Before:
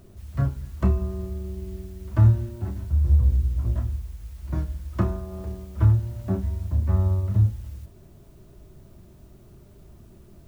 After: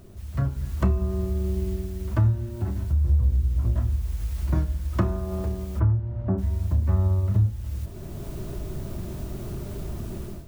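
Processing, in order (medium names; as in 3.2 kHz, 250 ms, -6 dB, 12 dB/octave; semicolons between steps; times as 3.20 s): level rider gain up to 15 dB; 5.79–6.37 s: low-pass 1.6 kHz -> 1.3 kHz 12 dB/octave; compression 2:1, threshold -30 dBFS, peak gain reduction 13.5 dB; trim +2 dB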